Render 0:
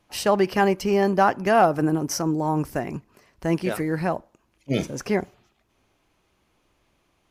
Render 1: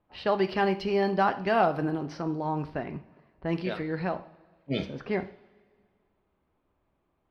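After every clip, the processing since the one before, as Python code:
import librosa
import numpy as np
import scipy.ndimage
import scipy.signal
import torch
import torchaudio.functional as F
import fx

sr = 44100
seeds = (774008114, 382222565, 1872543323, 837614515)

y = fx.high_shelf_res(x, sr, hz=5400.0, db=-9.5, q=3.0)
y = fx.env_lowpass(y, sr, base_hz=1200.0, full_db=-15.5)
y = fx.rev_double_slope(y, sr, seeds[0], early_s=0.49, late_s=2.0, knee_db=-18, drr_db=9.0)
y = y * 10.0 ** (-6.5 / 20.0)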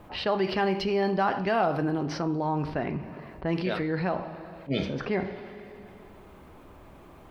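y = fx.env_flatten(x, sr, amount_pct=50)
y = y * 10.0 ** (-2.5 / 20.0)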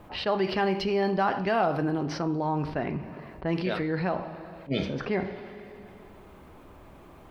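y = fx.attack_slew(x, sr, db_per_s=400.0)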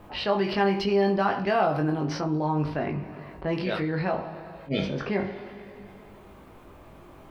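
y = fx.doubler(x, sr, ms=20.0, db=-4)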